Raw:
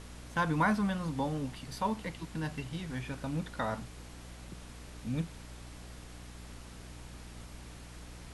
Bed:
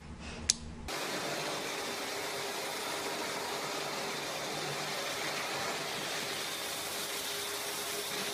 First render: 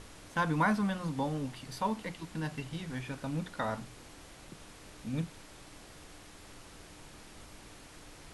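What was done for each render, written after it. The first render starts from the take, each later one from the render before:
mains-hum notches 60/120/180/240 Hz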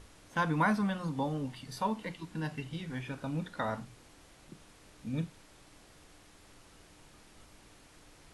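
noise reduction from a noise print 6 dB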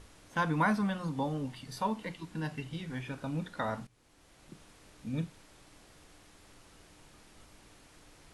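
0:03.87–0:04.53: fade in, from −17 dB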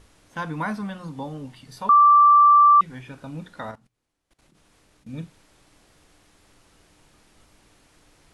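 0:01.89–0:02.81: beep over 1,170 Hz −10 dBFS
0:03.71–0:05.09: output level in coarse steps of 20 dB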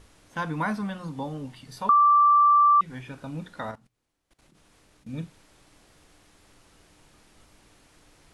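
downward compressor 2.5 to 1, threshold −18 dBFS, peak gain reduction 4.5 dB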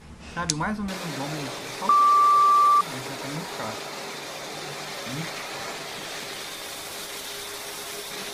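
mix in bed +2 dB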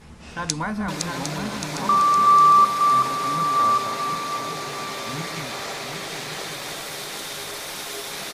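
feedback delay that plays each chunk backwards 378 ms, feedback 61%, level −3.5 dB
single-tap delay 1,130 ms −10 dB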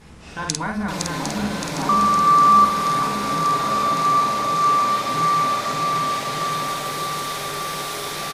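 double-tracking delay 49 ms −3.5 dB
echo whose low-pass opens from repeat to repeat 592 ms, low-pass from 750 Hz, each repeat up 1 octave, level −3 dB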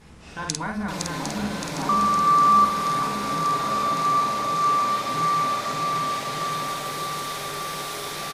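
level −3.5 dB

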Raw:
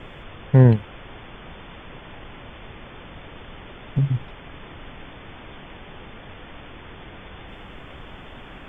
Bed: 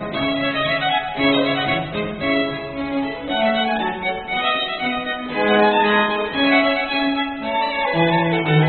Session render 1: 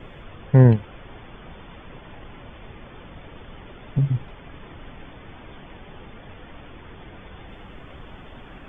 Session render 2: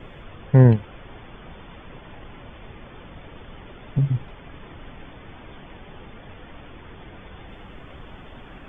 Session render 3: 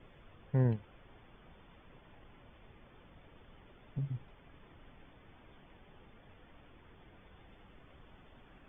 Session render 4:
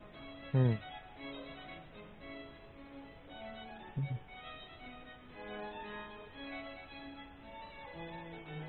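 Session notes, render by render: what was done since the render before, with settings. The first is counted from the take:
broadband denoise 6 dB, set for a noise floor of −42 dBFS
no processing that can be heard
level −16.5 dB
mix in bed −30 dB

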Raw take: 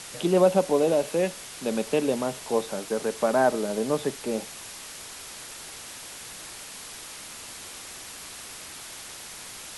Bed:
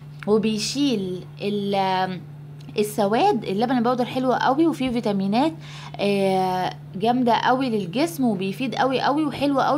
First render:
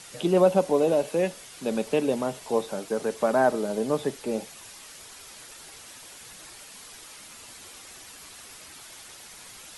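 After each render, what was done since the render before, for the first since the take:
broadband denoise 7 dB, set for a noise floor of −42 dBFS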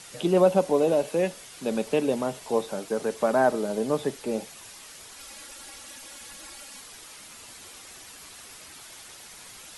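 0:05.18–0:06.81: comb filter 3.6 ms, depth 74%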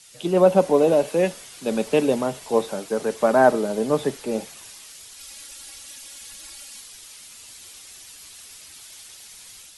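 automatic gain control gain up to 4 dB
multiband upward and downward expander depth 40%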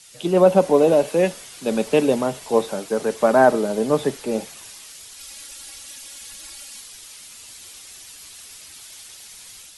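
level +2 dB
brickwall limiter −3 dBFS, peak gain reduction 1.5 dB

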